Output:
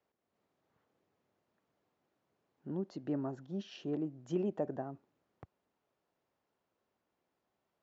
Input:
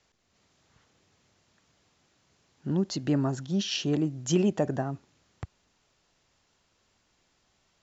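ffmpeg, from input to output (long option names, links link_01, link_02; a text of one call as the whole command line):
ffmpeg -i in.wav -af "bandpass=frequency=490:width_type=q:width=0.67:csg=0,volume=-7.5dB" out.wav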